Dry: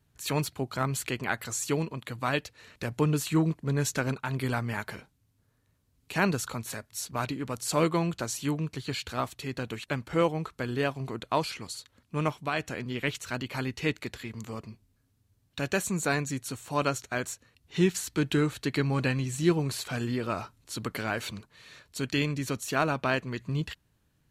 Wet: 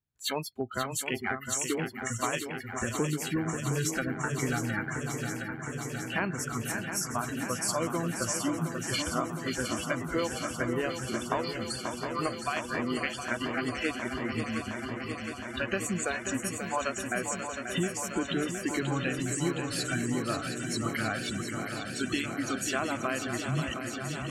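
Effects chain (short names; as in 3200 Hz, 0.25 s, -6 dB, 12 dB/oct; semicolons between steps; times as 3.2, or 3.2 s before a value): spectral noise reduction 29 dB; compressor, threshold -37 dBFS, peak gain reduction 17.5 dB; swung echo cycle 0.714 s, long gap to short 3:1, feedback 79%, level -8 dB; gain +8 dB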